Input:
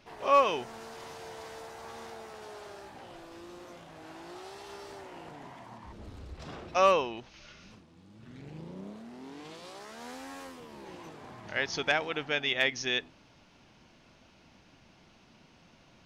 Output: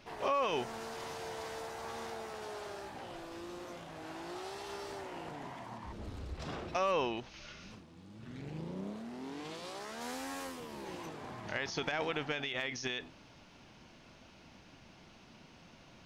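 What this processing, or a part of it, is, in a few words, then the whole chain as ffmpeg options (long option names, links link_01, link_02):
de-esser from a sidechain: -filter_complex "[0:a]asettb=1/sr,asplit=3[link_01][link_02][link_03];[link_01]atrim=end=10.014[link_04];[link_02]atrim=start=10.01:end=11.06,asetpts=PTS-STARTPTS,afade=type=in:duration=0.004:curve=qsin,afade=type=out:start_time=1.046:duration=0.004:curve=qsin,highshelf=frequency=6900:gain=6[link_05];[link_03]atrim=start=11.056[link_06];[link_04][link_05]acrossfade=duration=0.004:curve1=hsin:curve2=qsin[link_07];[link_07][link_06]acrossfade=duration=0.004:curve1=qsin:curve2=hsin,asplit=2[link_08][link_09];[link_09]highpass=frequency=6500:poles=1,apad=whole_len=707885[link_10];[link_08][link_10]sidechaincompress=threshold=-46dB:ratio=12:attack=4.9:release=24,volume=2dB"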